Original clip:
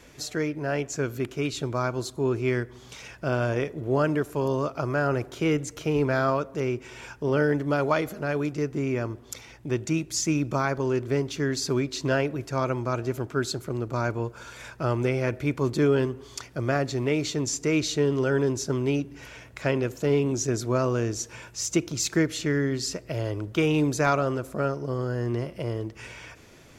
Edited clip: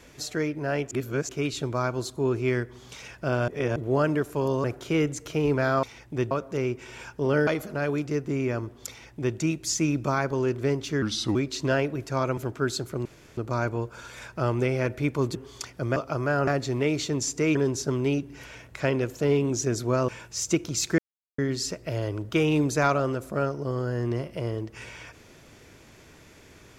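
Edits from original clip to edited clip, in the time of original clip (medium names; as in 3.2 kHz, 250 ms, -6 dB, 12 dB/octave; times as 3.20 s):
0.91–1.29 s: reverse
3.48–3.76 s: reverse
4.64–5.15 s: move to 16.73 s
7.50–7.94 s: delete
9.36–9.84 s: copy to 6.34 s
11.49–11.76 s: speed 81%
12.78–13.12 s: delete
13.80 s: insert room tone 0.32 s
15.78–16.12 s: delete
17.81–18.37 s: delete
20.90–21.31 s: delete
22.21–22.61 s: mute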